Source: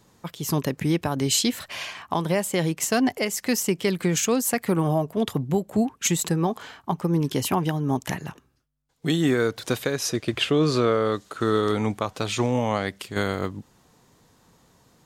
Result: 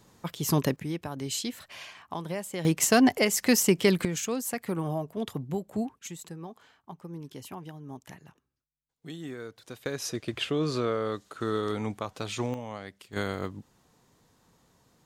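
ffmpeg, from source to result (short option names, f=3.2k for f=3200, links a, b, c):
-af "asetnsamples=n=441:p=0,asendcmd='0.76 volume volume -10.5dB;2.65 volume volume 1.5dB;4.05 volume volume -8.5dB;5.99 volume volume -18dB;9.86 volume volume -7.5dB;12.54 volume volume -14.5dB;13.13 volume volume -6dB',volume=-0.5dB"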